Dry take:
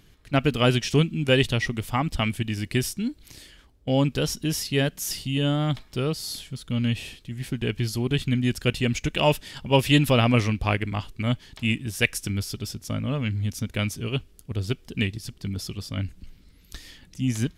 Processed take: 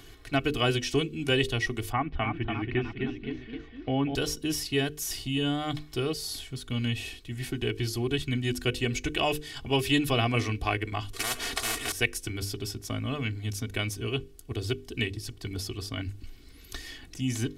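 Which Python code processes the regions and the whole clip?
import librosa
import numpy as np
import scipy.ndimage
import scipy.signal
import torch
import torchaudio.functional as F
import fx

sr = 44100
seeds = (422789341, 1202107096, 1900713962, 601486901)

y = fx.chain(x, sr, fx.lowpass(hz=2300.0, slope=24),
    fx.echo_pitch(ms=304, semitones=1, count=3, db_per_echo=-6.0), at=(1.92, 4.15))
y = fx.chain(y, sr, fx.cvsd(bps=64000),
    fx.comb(ms=4.3, depth=0.73),
    fx.spectral_comp(ratio=10.0), at=(11.13, 11.92))
y = fx.hum_notches(y, sr, base_hz=50, count=10)
y = y + 0.72 * np.pad(y, (int(2.7 * sr / 1000.0), 0))[:len(y)]
y = fx.band_squash(y, sr, depth_pct=40)
y = y * 10.0 ** (-4.5 / 20.0)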